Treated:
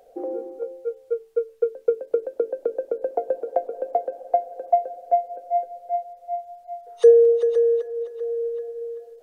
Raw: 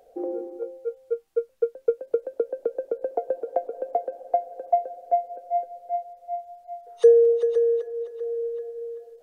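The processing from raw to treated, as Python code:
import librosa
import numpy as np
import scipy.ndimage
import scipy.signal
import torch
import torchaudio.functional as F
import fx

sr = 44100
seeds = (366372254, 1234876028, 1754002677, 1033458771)

y = fx.hum_notches(x, sr, base_hz=50, count=9)
y = y * librosa.db_to_amplitude(2.5)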